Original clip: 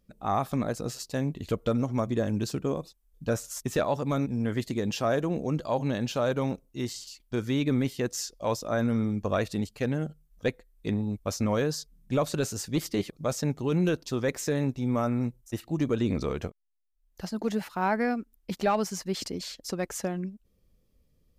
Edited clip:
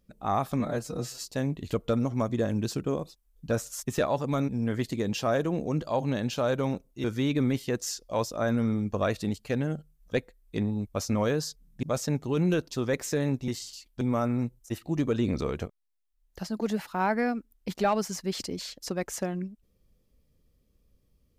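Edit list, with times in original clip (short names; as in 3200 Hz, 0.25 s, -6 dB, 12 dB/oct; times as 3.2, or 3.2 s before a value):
0.6–1.04 stretch 1.5×
6.82–7.35 move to 14.83
12.14–13.18 cut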